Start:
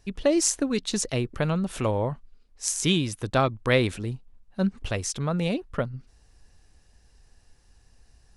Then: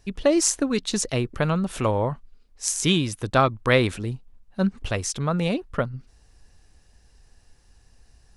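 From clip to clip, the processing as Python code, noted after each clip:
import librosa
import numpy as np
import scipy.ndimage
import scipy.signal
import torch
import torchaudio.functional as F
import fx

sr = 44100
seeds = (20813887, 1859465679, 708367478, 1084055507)

y = fx.dynamic_eq(x, sr, hz=1200.0, q=1.5, threshold_db=-39.0, ratio=4.0, max_db=4)
y = y * 10.0 ** (2.0 / 20.0)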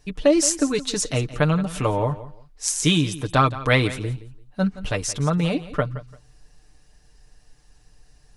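y = x + 0.65 * np.pad(x, (int(6.7 * sr / 1000.0), 0))[:len(x)]
y = fx.echo_feedback(y, sr, ms=171, feedback_pct=22, wet_db=-16)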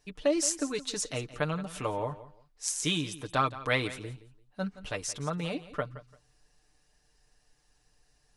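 y = fx.low_shelf(x, sr, hz=220.0, db=-9.0)
y = y * 10.0 ** (-8.0 / 20.0)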